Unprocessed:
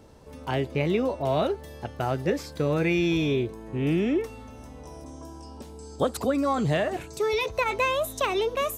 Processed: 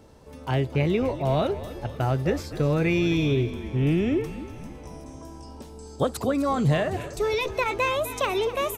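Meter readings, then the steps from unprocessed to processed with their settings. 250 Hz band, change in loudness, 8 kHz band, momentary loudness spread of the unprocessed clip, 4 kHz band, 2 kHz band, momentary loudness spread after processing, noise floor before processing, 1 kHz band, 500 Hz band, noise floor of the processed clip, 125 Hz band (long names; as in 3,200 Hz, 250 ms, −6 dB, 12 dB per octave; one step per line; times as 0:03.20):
+1.5 dB, +1.0 dB, 0.0 dB, 19 LU, +0.5 dB, 0.0 dB, 19 LU, −44 dBFS, +0.5 dB, +0.5 dB, −43 dBFS, +5.5 dB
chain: dynamic equaliser 120 Hz, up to +8 dB, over −46 dBFS, Q 2
echo with shifted repeats 254 ms, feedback 58%, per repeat −48 Hz, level −14 dB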